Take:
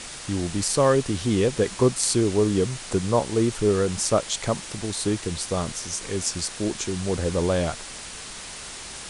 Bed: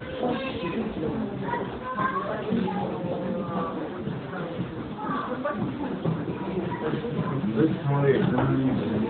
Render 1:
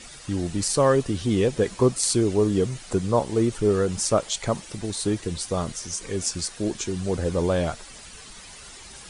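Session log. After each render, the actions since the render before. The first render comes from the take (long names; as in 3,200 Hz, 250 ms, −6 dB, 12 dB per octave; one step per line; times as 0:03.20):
broadband denoise 10 dB, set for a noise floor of −38 dBFS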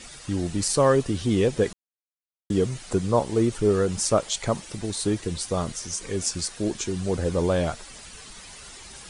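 0:01.73–0:02.50: silence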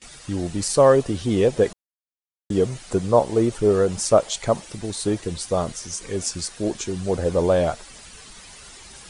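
noise gate with hold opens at −34 dBFS
dynamic equaliser 630 Hz, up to +7 dB, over −35 dBFS, Q 1.2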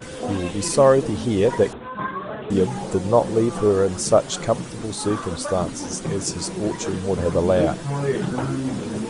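mix in bed −1.5 dB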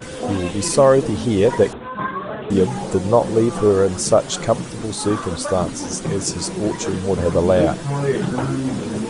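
level +3 dB
brickwall limiter −3 dBFS, peak gain reduction 2.5 dB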